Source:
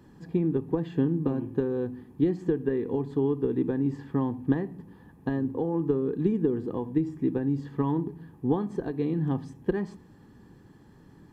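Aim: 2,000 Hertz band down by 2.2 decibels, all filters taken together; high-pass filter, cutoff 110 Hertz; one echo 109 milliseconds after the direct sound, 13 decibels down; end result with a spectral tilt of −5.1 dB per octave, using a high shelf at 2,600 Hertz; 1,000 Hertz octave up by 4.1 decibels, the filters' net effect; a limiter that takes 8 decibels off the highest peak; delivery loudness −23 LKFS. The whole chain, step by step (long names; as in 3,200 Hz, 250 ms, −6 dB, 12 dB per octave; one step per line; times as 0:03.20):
high-pass filter 110 Hz
parametric band 1,000 Hz +5.5 dB
parametric band 2,000 Hz −6.5 dB
high-shelf EQ 2,600 Hz +4 dB
brickwall limiter −19.5 dBFS
single-tap delay 109 ms −13 dB
level +7.5 dB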